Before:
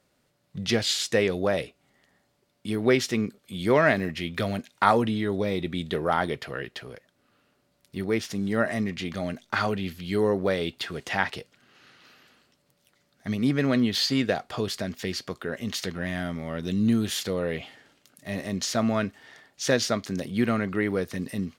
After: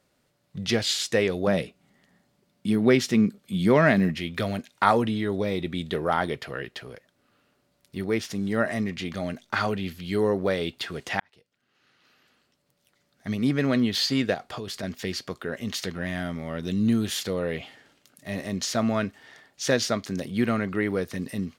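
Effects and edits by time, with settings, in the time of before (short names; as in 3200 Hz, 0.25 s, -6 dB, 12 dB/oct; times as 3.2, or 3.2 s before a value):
1.47–4.17 bell 190 Hz +9.5 dB
11.2–13.39 fade in
14.34–14.83 compressor 5:1, threshold -30 dBFS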